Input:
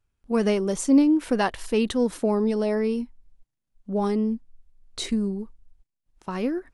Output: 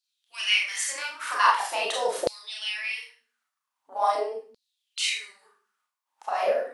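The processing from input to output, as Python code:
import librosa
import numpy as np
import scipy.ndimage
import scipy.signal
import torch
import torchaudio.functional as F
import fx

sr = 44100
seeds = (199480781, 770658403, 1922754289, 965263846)

y = fx.rev_schroeder(x, sr, rt60_s=0.39, comb_ms=26, drr_db=-2.5)
y = fx.spec_gate(y, sr, threshold_db=-10, keep='weak')
y = fx.filter_lfo_highpass(y, sr, shape='saw_down', hz=0.44, low_hz=460.0, high_hz=4400.0, q=6.5)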